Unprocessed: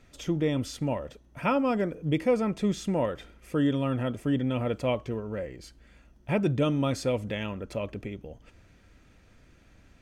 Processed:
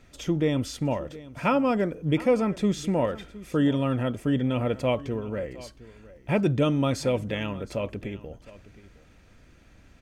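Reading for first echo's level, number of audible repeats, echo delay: -18.5 dB, 1, 715 ms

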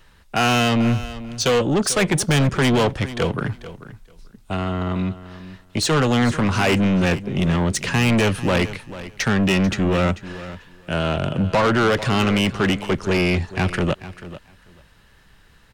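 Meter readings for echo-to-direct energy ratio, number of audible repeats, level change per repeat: -15.0 dB, 2, -16.0 dB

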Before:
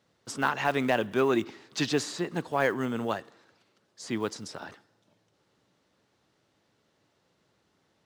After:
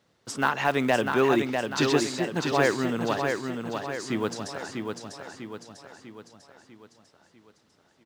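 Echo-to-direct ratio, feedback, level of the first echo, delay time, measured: -4.0 dB, 50%, -5.0 dB, 647 ms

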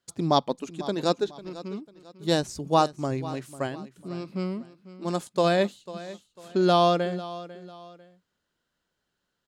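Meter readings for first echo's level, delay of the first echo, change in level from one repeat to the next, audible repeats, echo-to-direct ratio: -16.5 dB, 497 ms, -9.0 dB, 2, -16.0 dB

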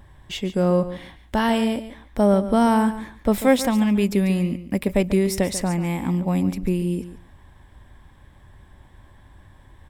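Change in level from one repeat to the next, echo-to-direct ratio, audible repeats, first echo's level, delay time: -16.0 dB, -13.0 dB, 2, -13.0 dB, 142 ms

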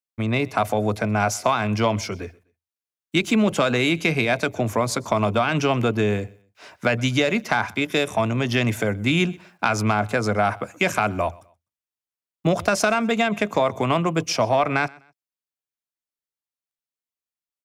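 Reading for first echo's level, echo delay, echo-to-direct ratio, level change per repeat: -24.0 dB, 126 ms, -23.5 dB, -10.5 dB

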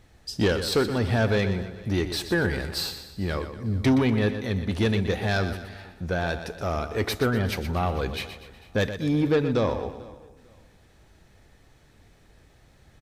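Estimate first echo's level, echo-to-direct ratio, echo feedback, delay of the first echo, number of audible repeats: -10.5 dB, -9.5 dB, no regular repeats, 122 ms, 7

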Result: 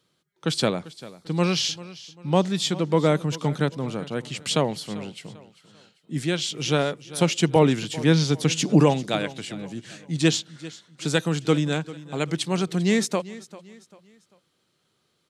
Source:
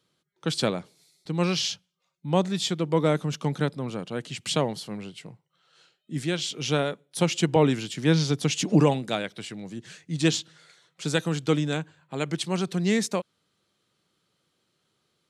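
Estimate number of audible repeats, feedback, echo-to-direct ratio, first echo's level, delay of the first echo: 2, 37%, -17.5 dB, -18.0 dB, 394 ms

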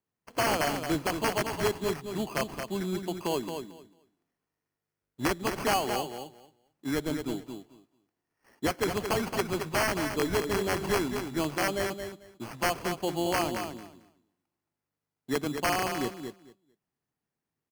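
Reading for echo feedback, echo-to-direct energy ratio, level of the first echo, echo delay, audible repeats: 17%, -7.0 dB, -7.0 dB, 222 ms, 2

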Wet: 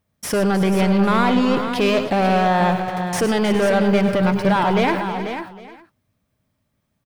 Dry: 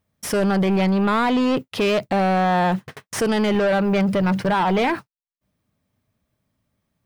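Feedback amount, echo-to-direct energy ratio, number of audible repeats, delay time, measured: no regular repeats, -5.5 dB, 6, 100 ms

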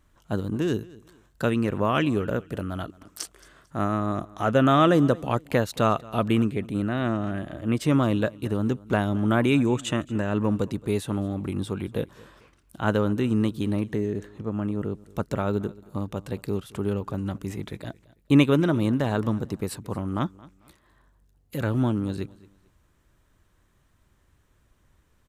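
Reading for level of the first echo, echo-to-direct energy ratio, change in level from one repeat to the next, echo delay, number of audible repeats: -22.0 dB, -21.5 dB, -10.0 dB, 223 ms, 2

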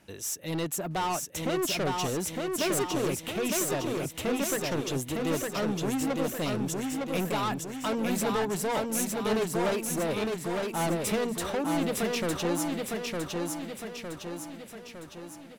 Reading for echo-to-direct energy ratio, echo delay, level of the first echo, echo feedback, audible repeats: -1.5 dB, 908 ms, -3.0 dB, 53%, 6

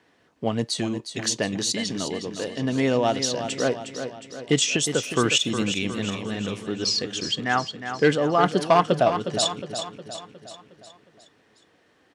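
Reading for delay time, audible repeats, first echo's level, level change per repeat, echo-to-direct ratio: 361 ms, 5, -9.0 dB, -5.5 dB, -7.5 dB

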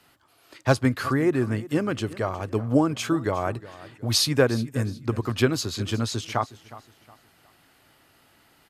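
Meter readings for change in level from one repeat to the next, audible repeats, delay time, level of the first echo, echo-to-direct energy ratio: -10.0 dB, 2, 363 ms, -18.0 dB, -17.5 dB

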